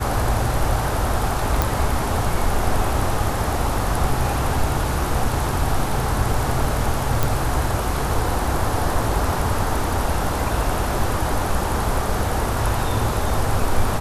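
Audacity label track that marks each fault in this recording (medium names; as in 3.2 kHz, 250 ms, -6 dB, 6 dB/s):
1.620000	1.620000	pop
7.230000	7.230000	pop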